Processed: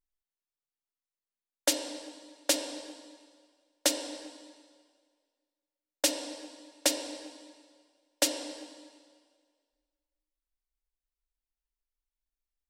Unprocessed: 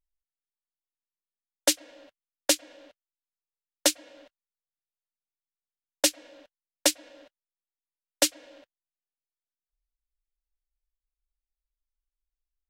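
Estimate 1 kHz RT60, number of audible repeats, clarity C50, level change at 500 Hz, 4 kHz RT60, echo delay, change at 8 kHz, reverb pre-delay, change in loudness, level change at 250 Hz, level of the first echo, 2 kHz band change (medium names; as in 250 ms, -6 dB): 1.8 s, no echo, 6.0 dB, -2.0 dB, 1.7 s, no echo, -4.0 dB, 5 ms, -5.0 dB, -1.0 dB, no echo, -3.5 dB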